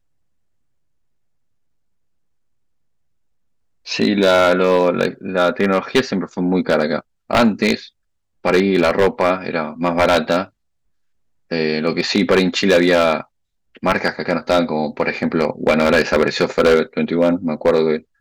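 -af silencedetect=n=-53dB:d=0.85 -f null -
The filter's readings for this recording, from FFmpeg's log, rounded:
silence_start: 0.00
silence_end: 3.85 | silence_duration: 3.85
silence_start: 10.50
silence_end: 11.50 | silence_duration: 1.00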